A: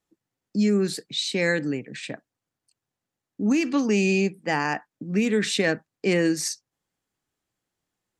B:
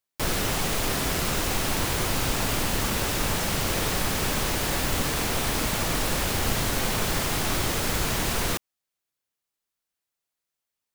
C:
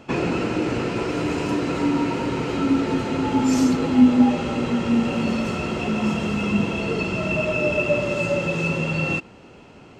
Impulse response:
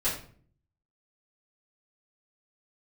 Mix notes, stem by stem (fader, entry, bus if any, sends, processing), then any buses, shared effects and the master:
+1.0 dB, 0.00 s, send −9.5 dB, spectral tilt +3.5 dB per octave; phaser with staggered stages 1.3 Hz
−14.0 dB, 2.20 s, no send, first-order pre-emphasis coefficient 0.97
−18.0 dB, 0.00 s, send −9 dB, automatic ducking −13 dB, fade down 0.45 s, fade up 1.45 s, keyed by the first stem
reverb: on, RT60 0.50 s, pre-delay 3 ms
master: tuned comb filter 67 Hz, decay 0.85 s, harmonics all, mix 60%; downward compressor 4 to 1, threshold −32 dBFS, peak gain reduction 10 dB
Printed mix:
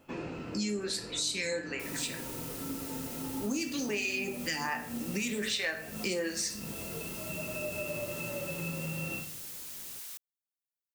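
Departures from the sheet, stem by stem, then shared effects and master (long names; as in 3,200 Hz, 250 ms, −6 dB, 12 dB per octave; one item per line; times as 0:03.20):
stem B: entry 2.20 s → 1.60 s
master: missing tuned comb filter 67 Hz, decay 0.85 s, harmonics all, mix 60%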